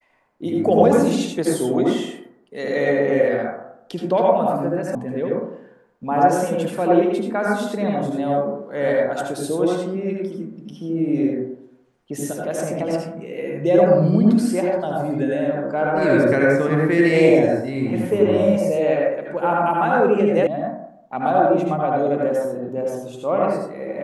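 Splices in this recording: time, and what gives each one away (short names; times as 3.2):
4.95 sound cut off
20.47 sound cut off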